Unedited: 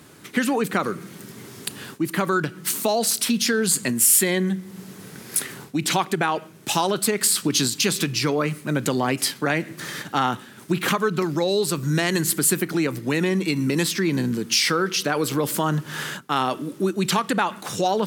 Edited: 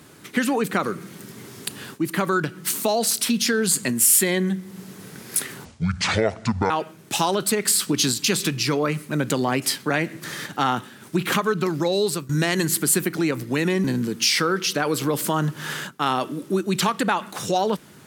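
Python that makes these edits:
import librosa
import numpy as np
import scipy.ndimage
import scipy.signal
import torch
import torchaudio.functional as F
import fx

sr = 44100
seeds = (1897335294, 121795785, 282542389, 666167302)

y = fx.edit(x, sr, fx.speed_span(start_s=5.65, length_s=0.61, speed=0.58),
    fx.fade_out_to(start_s=11.59, length_s=0.26, curve='qsin', floor_db=-19.0),
    fx.cut(start_s=13.4, length_s=0.74), tone=tone)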